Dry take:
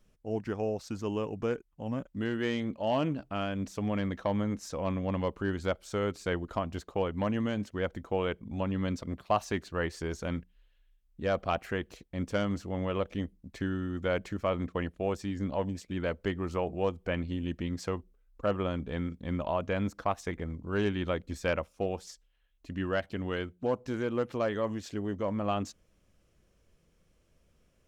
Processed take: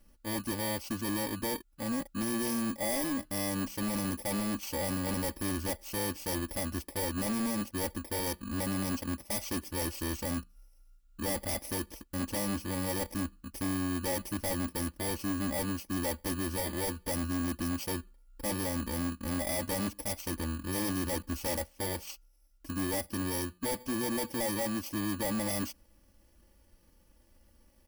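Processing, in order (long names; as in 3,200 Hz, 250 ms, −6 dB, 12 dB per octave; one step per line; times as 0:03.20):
samples in bit-reversed order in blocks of 32 samples
wave folding −27 dBFS
comb filter 3.5 ms, depth 79%
tube saturation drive 30 dB, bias 0.2
level +3 dB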